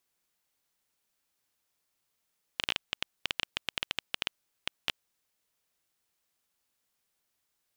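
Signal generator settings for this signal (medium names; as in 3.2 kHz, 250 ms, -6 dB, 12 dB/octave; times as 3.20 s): random clicks 8.9 per s -10.5 dBFS 2.65 s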